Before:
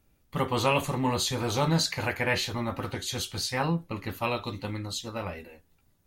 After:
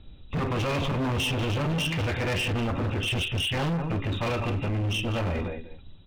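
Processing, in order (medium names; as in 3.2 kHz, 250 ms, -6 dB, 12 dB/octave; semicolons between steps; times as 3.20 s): knee-point frequency compression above 2.4 kHz 4:1; tilt EQ -2.5 dB/octave; in parallel at +2 dB: compression, threshold -31 dBFS, peak gain reduction 16 dB; on the sum: peak limiter -13.5 dBFS, peak gain reduction 7 dB; on a send: delay 192 ms -12 dB; on the sum: overload inside the chain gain 28 dB; trim +3 dB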